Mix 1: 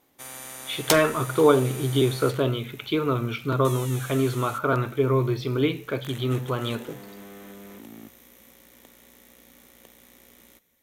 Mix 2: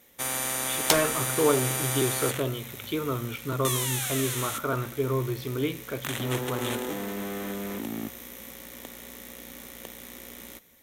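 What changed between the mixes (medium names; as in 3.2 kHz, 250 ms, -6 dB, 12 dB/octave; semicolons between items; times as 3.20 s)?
speech -5.5 dB; first sound +10.0 dB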